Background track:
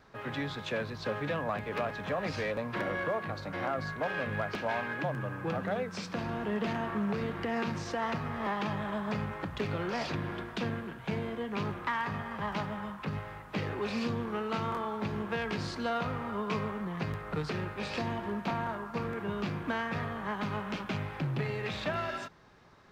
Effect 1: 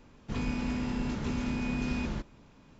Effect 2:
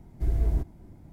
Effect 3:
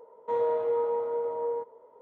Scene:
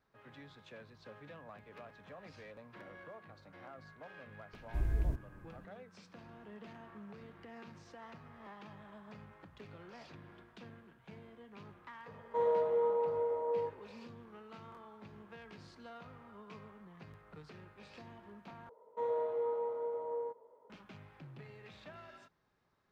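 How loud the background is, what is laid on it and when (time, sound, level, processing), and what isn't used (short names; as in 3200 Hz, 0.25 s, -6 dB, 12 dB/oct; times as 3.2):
background track -19 dB
4.53 add 2 -8 dB + notch 770 Hz, Q 6.8
12.06 add 3 -4 dB
18.69 replace with 3 -8 dB
not used: 1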